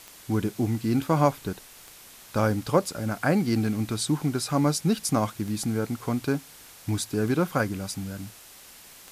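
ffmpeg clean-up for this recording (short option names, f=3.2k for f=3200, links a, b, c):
-af "adeclick=t=4,afftdn=nr=22:nf=-49"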